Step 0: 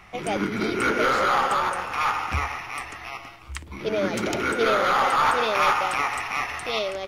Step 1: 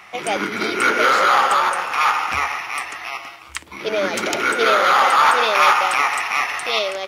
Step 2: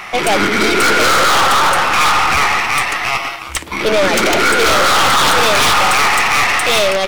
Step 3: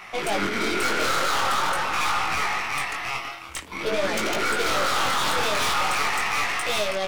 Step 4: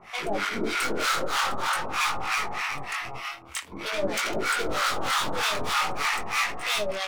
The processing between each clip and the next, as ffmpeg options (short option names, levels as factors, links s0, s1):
-af "highpass=f=700:p=1,volume=2.51"
-af "aeval=exprs='0.794*sin(PI/2*3.98*val(0)/0.794)':c=same,aeval=exprs='(tanh(3.16*val(0)+0.5)-tanh(0.5))/3.16':c=same"
-af "flanger=delay=18:depth=6.3:speed=0.46,volume=0.355"
-filter_complex "[0:a]acrossover=split=790[s0][s1];[s0]aeval=exprs='val(0)*(1-1/2+1/2*cos(2*PI*3.2*n/s))':c=same[s2];[s1]aeval=exprs='val(0)*(1-1/2-1/2*cos(2*PI*3.2*n/s))':c=same[s3];[s2][s3]amix=inputs=2:normalize=0,volume=1.19"